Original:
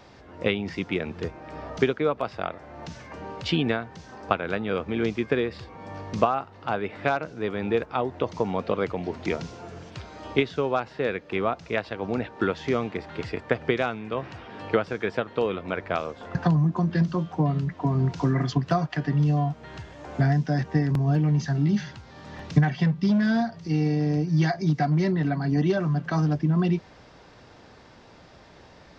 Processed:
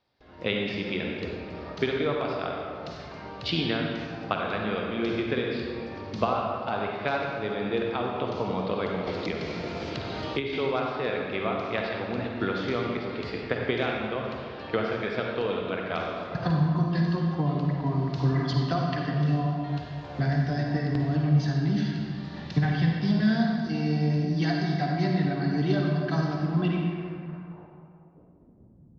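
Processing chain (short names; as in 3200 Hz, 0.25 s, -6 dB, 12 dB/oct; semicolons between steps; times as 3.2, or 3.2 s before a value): gate with hold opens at -40 dBFS; low-pass sweep 4300 Hz -> 130 Hz, 26.5–28.99; reverb RT60 2.4 s, pre-delay 43 ms, DRR -0.5 dB; 9.07–10.53 three-band squash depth 100%; gain -5.5 dB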